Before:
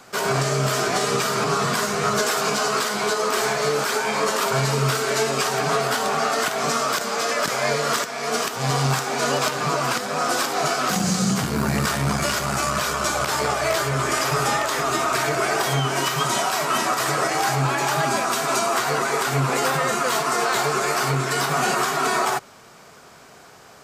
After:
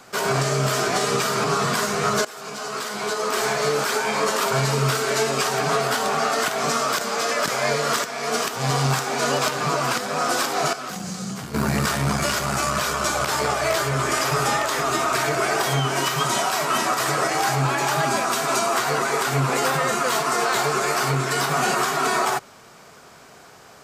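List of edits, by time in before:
2.25–3.55 fade in, from -19.5 dB
10.73–11.54 gain -9.5 dB

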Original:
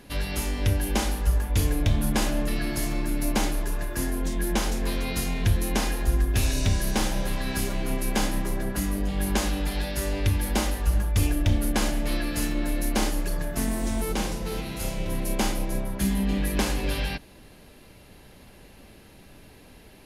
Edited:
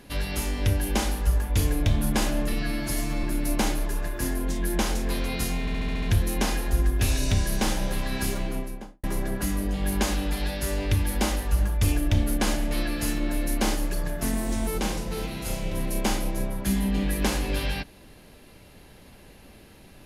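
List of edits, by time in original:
2.53–3 stretch 1.5×
5.37 stutter 0.07 s, 7 plays
7.67–8.38 studio fade out

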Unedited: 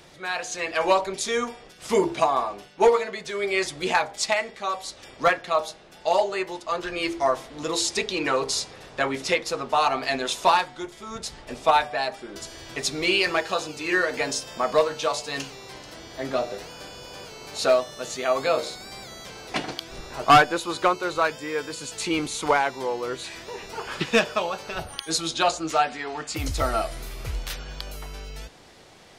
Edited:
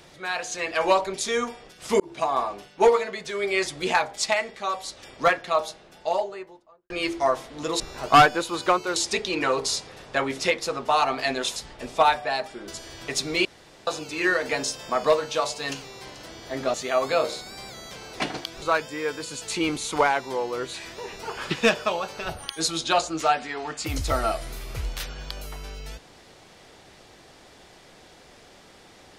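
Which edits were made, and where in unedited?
2–2.4 fade in
5.69–6.9 studio fade out
10.4–11.24 cut
13.13–13.55 room tone
16.42–18.08 cut
19.96–21.12 move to 7.8

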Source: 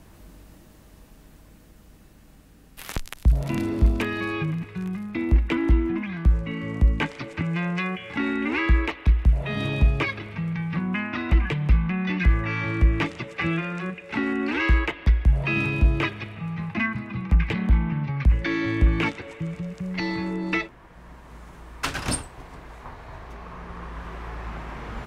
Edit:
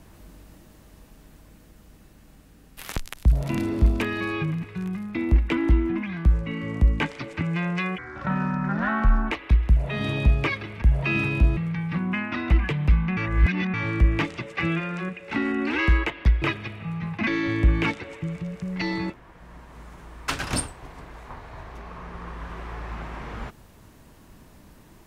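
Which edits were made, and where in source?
7.98–8.87 speed 67%
11.98–12.55 reverse
15.23–15.98 move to 10.38
16.83–18.45 cut
20.28–20.65 cut

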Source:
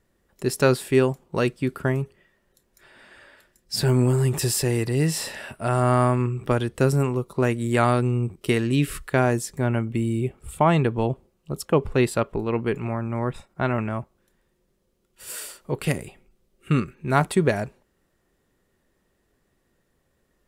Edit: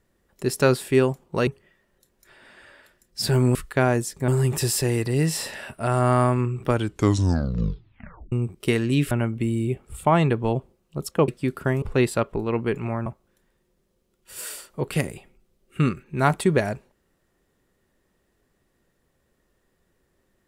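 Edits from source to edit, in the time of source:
1.47–2.01 move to 11.82
6.53 tape stop 1.60 s
8.92–9.65 move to 4.09
13.06–13.97 cut

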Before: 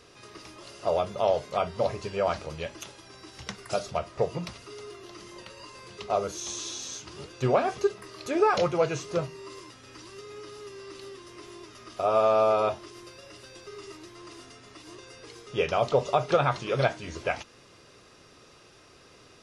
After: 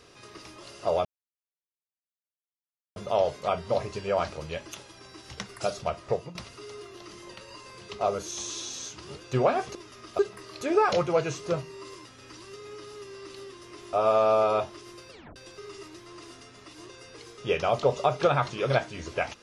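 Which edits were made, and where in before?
1.05 insert silence 1.91 s
4.18–4.44 fade out, to -15 dB
11.58–12.02 move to 7.84
13.19 tape stop 0.26 s

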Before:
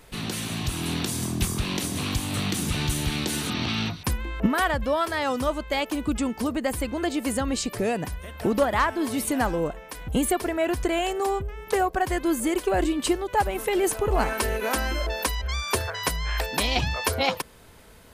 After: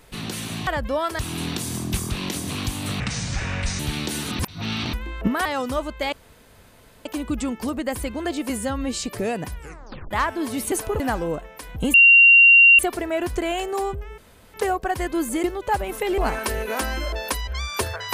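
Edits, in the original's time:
2.48–2.98 speed 63%
3.58–4.12 reverse
4.64–5.16 move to 0.67
5.83 insert room tone 0.93 s
7.27–7.62 stretch 1.5×
8.15 tape stop 0.56 s
10.26 add tone 2760 Hz -8 dBFS 0.85 s
11.65 insert room tone 0.36 s
12.55–13.1 cut
13.84–14.12 move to 9.32

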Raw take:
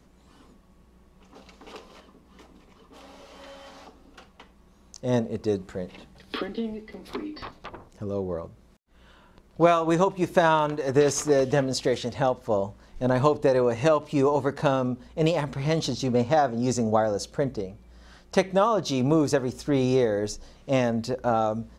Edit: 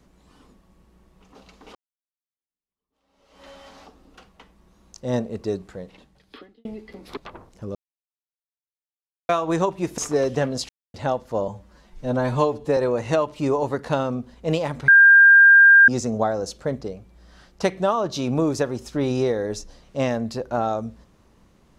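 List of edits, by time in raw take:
1.75–3.47 fade in exponential
5.43–6.65 fade out
7.17–7.56 cut
8.14–9.68 mute
10.37–11.14 cut
11.85–12.1 mute
12.64–13.5 stretch 1.5×
15.61–16.61 bleep 1600 Hz -7.5 dBFS

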